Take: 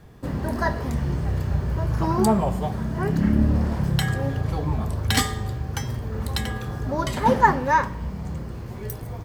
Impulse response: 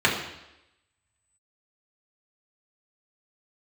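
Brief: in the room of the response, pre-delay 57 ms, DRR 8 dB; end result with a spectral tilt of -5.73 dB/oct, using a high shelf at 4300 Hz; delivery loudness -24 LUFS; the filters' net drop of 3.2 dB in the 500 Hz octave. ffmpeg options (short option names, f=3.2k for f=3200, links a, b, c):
-filter_complex "[0:a]equalizer=f=500:t=o:g=-4,highshelf=f=4.3k:g=-3.5,asplit=2[a][b];[1:a]atrim=start_sample=2205,adelay=57[c];[b][c]afir=irnorm=-1:irlink=0,volume=-26dB[d];[a][d]amix=inputs=2:normalize=0,volume=0.5dB"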